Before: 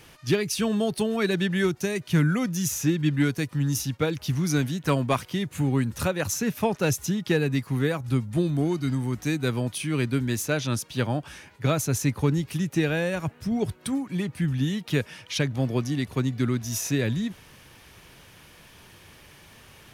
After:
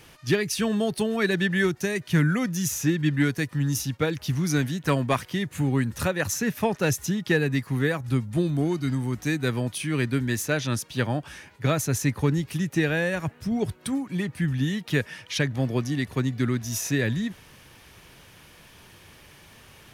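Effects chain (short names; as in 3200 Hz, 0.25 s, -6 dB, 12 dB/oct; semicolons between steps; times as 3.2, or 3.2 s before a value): dynamic EQ 1800 Hz, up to +7 dB, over -51 dBFS, Q 4.9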